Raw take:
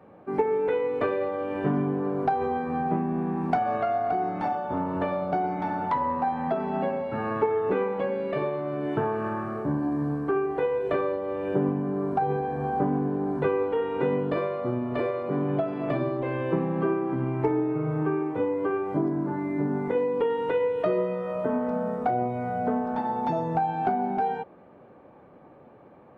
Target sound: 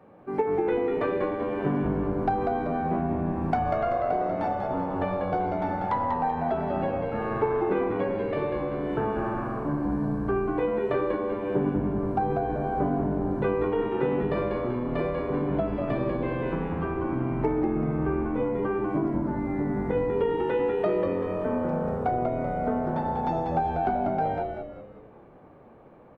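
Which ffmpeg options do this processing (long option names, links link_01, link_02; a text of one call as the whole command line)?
ffmpeg -i in.wav -filter_complex "[0:a]asettb=1/sr,asplit=3[link_01][link_02][link_03];[link_01]atrim=end=16.494[link_04];[link_02]atrim=start=16.49:end=16.97,asetpts=PTS-STARTPTS,afade=type=in:duration=0.004:curve=qsin,afade=type=out:start_time=0.476:duration=0.004:curve=qsin,equalizer=frequency=370:width=1.1:gain=-6.5[link_05];[link_03]atrim=start=16.966[link_06];[link_04][link_05]acrossfade=duration=0.004:curve1=hsin:curve2=qsin[link_07];[link_07][link_06]acrossfade=duration=0.004:curve1=qsin:curve2=hsin,asplit=2[link_08][link_09];[link_09]asplit=5[link_10][link_11][link_12][link_13][link_14];[link_10]adelay=192,afreqshift=-87,volume=-4.5dB[link_15];[link_11]adelay=384,afreqshift=-174,volume=-11.8dB[link_16];[link_12]adelay=576,afreqshift=-261,volume=-19.2dB[link_17];[link_13]adelay=768,afreqshift=-348,volume=-26.5dB[link_18];[link_14]adelay=960,afreqshift=-435,volume=-33.8dB[link_19];[link_15][link_16][link_17][link_18][link_19]amix=inputs=5:normalize=0[link_20];[link_08][link_20]amix=inputs=2:normalize=0,volume=-1.5dB" out.wav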